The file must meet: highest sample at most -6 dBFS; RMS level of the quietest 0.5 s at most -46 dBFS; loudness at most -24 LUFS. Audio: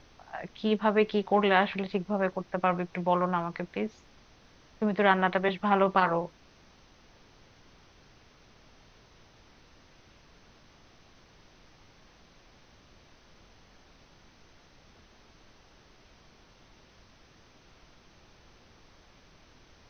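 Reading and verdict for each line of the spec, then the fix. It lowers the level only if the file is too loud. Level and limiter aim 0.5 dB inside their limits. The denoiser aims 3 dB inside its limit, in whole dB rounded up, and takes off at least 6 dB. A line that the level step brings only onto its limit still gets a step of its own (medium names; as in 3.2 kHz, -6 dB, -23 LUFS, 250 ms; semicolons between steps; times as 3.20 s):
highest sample -7.0 dBFS: pass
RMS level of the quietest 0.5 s -58 dBFS: pass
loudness -28.0 LUFS: pass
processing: none needed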